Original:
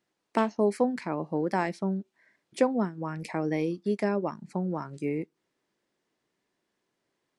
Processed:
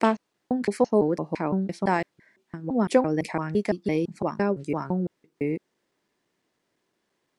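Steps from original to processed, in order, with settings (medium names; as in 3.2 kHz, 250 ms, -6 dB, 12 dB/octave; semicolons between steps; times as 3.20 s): slices played last to first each 169 ms, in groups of 3; trim +4 dB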